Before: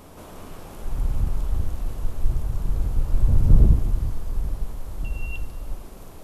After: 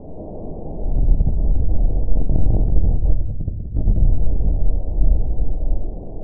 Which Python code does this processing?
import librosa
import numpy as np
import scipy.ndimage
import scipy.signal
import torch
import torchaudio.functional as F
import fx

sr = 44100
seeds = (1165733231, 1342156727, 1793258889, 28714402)

y = fx.cycle_switch(x, sr, every=3, mode='muted', at=(2.12, 2.71), fade=0.02)
y = scipy.signal.sosfilt(scipy.signal.butter(8, 750.0, 'lowpass', fs=sr, output='sos'), y)
y = fx.over_compress(y, sr, threshold_db=-22.0, ratio=-0.5)
y = fx.room_shoebox(y, sr, seeds[0], volume_m3=250.0, walls='mixed', distance_m=0.51)
y = y * 10.0 ** (6.5 / 20.0)